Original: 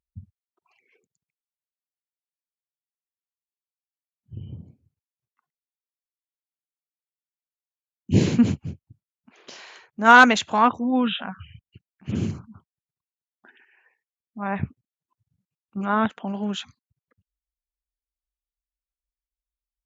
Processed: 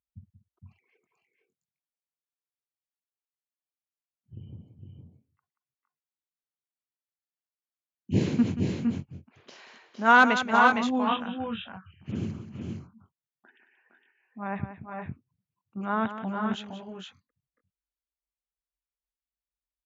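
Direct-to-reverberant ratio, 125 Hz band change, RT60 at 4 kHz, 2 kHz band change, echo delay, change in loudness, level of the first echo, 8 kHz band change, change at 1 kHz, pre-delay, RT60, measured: no reverb audible, −5.0 dB, no reverb audible, −4.5 dB, 181 ms, −5.5 dB, −11.5 dB, can't be measured, −4.0 dB, no reverb audible, no reverb audible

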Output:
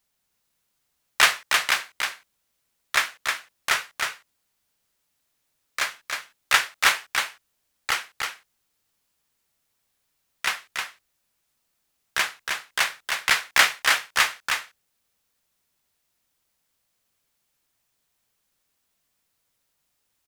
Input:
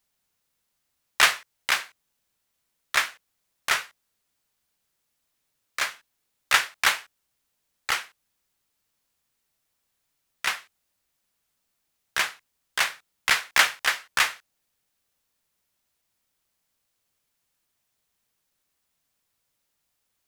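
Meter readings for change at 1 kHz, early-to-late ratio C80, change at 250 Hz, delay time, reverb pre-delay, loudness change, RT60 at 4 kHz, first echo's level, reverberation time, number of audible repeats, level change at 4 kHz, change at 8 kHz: +2.5 dB, no reverb audible, +2.5 dB, 313 ms, no reverb audible, +1.0 dB, no reverb audible, −4.5 dB, no reverb audible, 1, +2.5 dB, +2.5 dB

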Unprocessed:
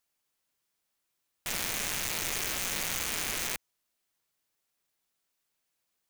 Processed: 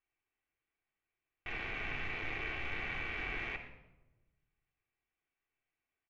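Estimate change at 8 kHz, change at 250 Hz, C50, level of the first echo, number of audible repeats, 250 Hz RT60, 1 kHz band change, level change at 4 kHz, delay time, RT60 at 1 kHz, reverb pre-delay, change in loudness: below −35 dB, −4.5 dB, 8.5 dB, −15.5 dB, 1, 1.3 s, −5.0 dB, −13.5 dB, 121 ms, 0.90 s, 3 ms, −8.0 dB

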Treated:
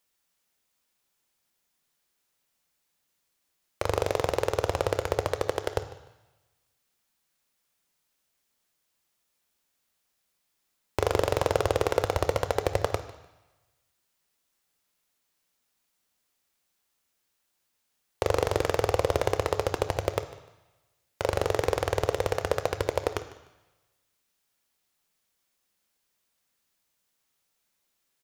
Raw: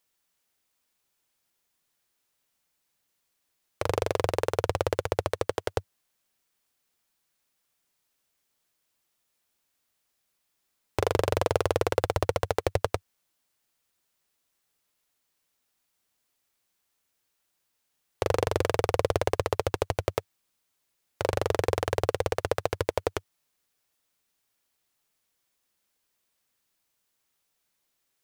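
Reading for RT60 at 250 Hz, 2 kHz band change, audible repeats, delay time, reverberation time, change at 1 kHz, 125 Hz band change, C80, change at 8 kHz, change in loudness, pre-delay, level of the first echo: 1.0 s, +0.5 dB, 2, 150 ms, 1.0 s, +0.5 dB, −0.5 dB, 13.0 dB, +0.5 dB, +0.5 dB, 3 ms, −19.0 dB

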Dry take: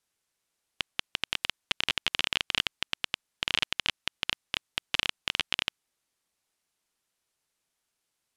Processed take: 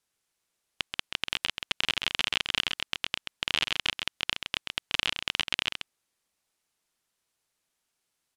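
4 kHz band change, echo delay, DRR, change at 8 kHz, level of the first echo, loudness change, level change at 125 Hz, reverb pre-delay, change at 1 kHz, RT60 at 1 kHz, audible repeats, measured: +1.0 dB, 132 ms, no reverb audible, +1.0 dB, −6.5 dB, +1.0 dB, +1.0 dB, no reverb audible, +1.0 dB, no reverb audible, 1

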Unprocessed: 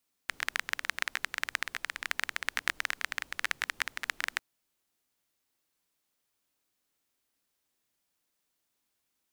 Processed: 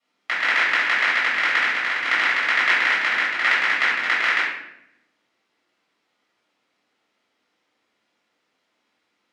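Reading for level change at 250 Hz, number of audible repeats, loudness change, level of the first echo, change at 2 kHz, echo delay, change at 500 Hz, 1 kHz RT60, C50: +15.5 dB, no echo audible, +15.0 dB, no echo audible, +15.5 dB, no echo audible, +16.0 dB, 0.70 s, 1.0 dB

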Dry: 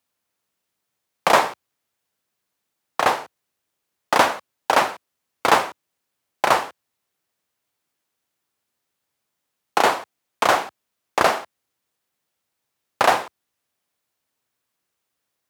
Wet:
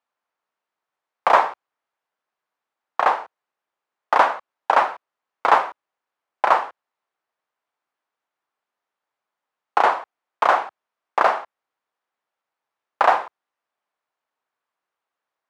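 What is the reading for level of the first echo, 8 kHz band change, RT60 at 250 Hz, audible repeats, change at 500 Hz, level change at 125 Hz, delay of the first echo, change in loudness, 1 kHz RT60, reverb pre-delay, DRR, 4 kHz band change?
no echo audible, below −15 dB, no reverb audible, no echo audible, −1.5 dB, below −10 dB, no echo audible, +0.5 dB, no reverb audible, no reverb audible, no reverb audible, −9.0 dB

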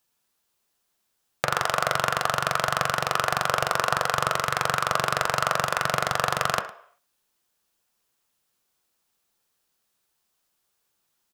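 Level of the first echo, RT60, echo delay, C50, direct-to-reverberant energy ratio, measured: −19.0 dB, 0.55 s, 109 ms, 11.0 dB, 6.0 dB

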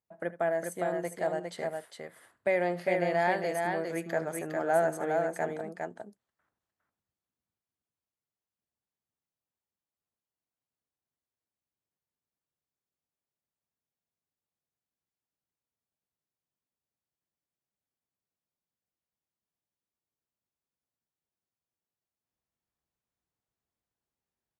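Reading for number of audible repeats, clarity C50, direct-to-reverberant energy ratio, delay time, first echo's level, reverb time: 2, no reverb audible, no reverb audible, 76 ms, −17.0 dB, no reverb audible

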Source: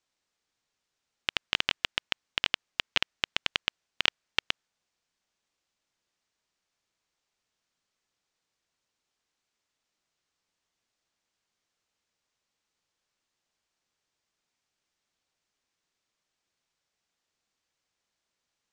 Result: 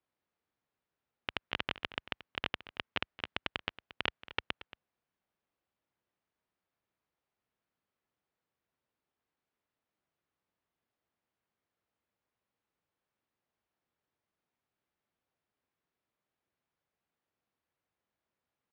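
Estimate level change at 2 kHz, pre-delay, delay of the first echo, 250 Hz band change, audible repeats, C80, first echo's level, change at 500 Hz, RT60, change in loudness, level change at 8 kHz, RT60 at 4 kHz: −7.0 dB, no reverb audible, 228 ms, 0.0 dB, 1, no reverb audible, −16.5 dB, −1.0 dB, no reverb audible, −8.5 dB, below −20 dB, no reverb audible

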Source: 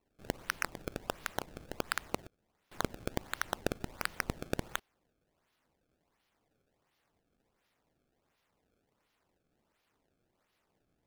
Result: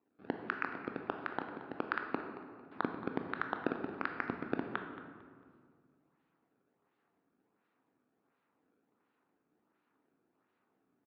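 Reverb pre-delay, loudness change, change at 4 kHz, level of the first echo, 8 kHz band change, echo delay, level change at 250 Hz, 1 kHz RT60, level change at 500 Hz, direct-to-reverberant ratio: 16 ms, −0.5 dB, −12.0 dB, −15.0 dB, below −30 dB, 225 ms, +3.5 dB, 1.8 s, 0.0 dB, 4.5 dB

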